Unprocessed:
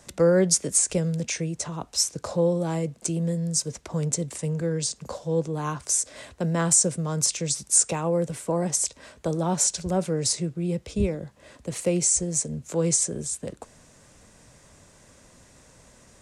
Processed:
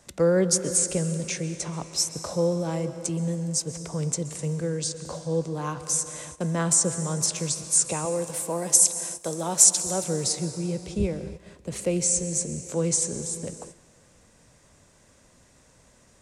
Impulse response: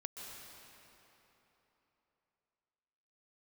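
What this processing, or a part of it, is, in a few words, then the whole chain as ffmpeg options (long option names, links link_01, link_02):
keyed gated reverb: -filter_complex "[0:a]asettb=1/sr,asplit=3[link_01][link_02][link_03];[link_01]atrim=end=8.054[link_04];[link_02]atrim=start=8.05:end=10.04,asetpts=PTS-STARTPTS,afade=type=in:duration=0.004:curve=qsin,afade=type=out:start_time=1.986:duration=0.004:curve=qsin,aemphasis=mode=production:type=bsi[link_05];[link_03]atrim=start=10.036[link_06];[link_04][link_05]acrossfade=duration=0.004:curve1=hsin:curve2=qsin[link_07];[link_07][link_06]acrossfade=duration=0.004:curve1=qsin:curve2=hsin,asplit=3[link_08][link_09][link_10];[1:a]atrim=start_sample=2205[link_11];[link_09][link_11]afir=irnorm=-1:irlink=0[link_12];[link_10]apad=whole_len=715164[link_13];[link_12][link_13]sidechaingate=range=-14dB:threshold=-47dB:ratio=16:detection=peak,volume=-1.5dB[link_14];[link_08][link_14]amix=inputs=2:normalize=0,volume=-5dB"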